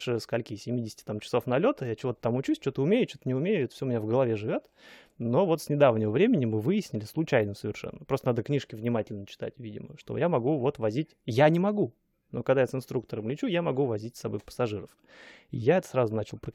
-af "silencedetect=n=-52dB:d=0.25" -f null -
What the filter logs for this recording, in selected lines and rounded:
silence_start: 11.91
silence_end: 12.33 | silence_duration: 0.42